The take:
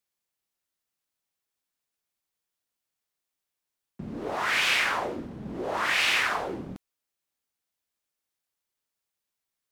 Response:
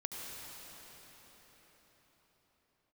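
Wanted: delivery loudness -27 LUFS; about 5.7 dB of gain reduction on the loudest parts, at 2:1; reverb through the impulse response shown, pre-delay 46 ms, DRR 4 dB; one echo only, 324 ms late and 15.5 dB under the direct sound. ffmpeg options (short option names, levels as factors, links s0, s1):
-filter_complex "[0:a]acompressor=threshold=0.0282:ratio=2,aecho=1:1:324:0.168,asplit=2[s0][s1];[1:a]atrim=start_sample=2205,adelay=46[s2];[s1][s2]afir=irnorm=-1:irlink=0,volume=0.562[s3];[s0][s3]amix=inputs=2:normalize=0,volume=1.5"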